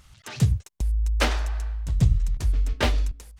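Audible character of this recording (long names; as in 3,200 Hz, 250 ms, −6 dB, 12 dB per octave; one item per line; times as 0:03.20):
background noise floor −59 dBFS
spectral slope −5.5 dB per octave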